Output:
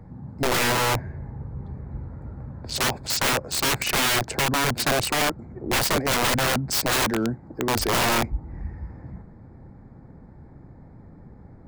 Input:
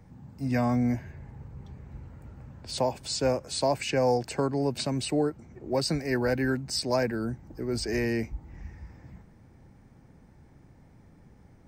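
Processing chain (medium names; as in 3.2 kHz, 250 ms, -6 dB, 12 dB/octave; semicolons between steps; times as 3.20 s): local Wiener filter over 15 samples; 7.01–7.77 s: high-pass 190 Hz 6 dB/octave; integer overflow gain 25.5 dB; trim +9 dB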